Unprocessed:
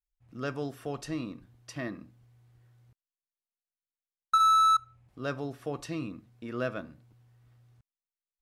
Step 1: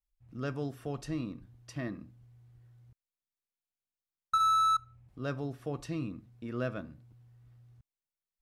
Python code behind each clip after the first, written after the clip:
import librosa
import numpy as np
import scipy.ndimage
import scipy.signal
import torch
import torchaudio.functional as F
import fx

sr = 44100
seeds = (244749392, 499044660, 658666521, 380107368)

y = fx.low_shelf(x, sr, hz=220.0, db=9.5)
y = F.gain(torch.from_numpy(y), -4.5).numpy()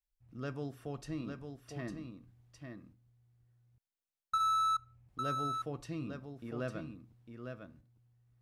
y = x + 10.0 ** (-6.5 / 20.0) * np.pad(x, (int(853 * sr / 1000.0), 0))[:len(x)]
y = F.gain(torch.from_numpy(y), -4.5).numpy()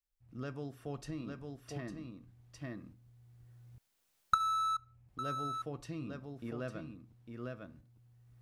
y = fx.recorder_agc(x, sr, target_db=-30.0, rise_db_per_s=9.7, max_gain_db=30)
y = F.gain(torch.from_numpy(y), -2.5).numpy()